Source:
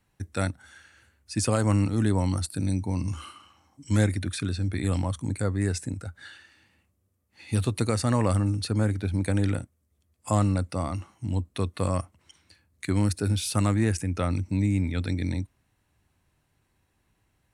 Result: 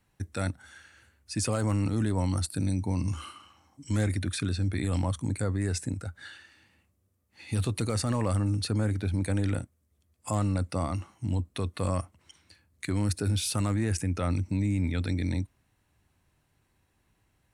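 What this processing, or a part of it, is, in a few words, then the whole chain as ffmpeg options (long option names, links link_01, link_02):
clipper into limiter: -af "asoftclip=type=hard:threshold=-14dB,alimiter=limit=-19.5dB:level=0:latency=1:release=11"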